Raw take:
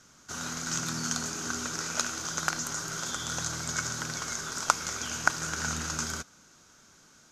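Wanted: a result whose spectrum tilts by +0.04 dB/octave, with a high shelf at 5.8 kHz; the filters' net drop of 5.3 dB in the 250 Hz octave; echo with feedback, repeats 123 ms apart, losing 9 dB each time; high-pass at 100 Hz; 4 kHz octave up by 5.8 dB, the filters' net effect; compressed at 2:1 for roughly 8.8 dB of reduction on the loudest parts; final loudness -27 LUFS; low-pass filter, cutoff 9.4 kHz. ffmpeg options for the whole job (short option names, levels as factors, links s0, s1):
-af "highpass=100,lowpass=9400,equalizer=f=250:t=o:g=-7,equalizer=f=4000:t=o:g=4.5,highshelf=f=5800:g=7,acompressor=threshold=0.02:ratio=2,aecho=1:1:123|246|369|492:0.355|0.124|0.0435|0.0152,volume=1.78"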